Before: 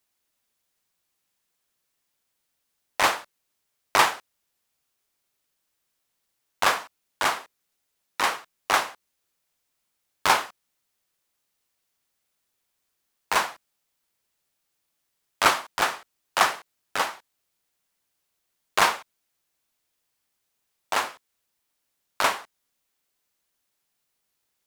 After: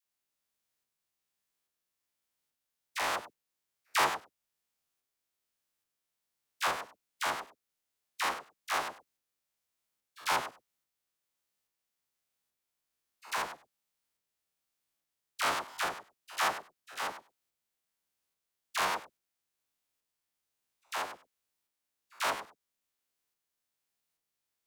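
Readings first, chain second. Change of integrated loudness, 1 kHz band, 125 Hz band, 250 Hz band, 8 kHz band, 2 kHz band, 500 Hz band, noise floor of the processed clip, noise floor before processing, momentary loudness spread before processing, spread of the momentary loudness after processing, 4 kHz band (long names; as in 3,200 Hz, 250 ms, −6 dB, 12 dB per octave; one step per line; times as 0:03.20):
−9.5 dB, −9.0 dB, −9.5 dB, −9.0 dB, −9.0 dB, −9.0 dB, −9.0 dB, below −85 dBFS, −78 dBFS, 14 LU, 16 LU, −9.5 dB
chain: spectrum averaged block by block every 100 ms
shaped tremolo saw up 1.2 Hz, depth 35%
all-pass dispersion lows, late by 57 ms, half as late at 850 Hz
level −5.5 dB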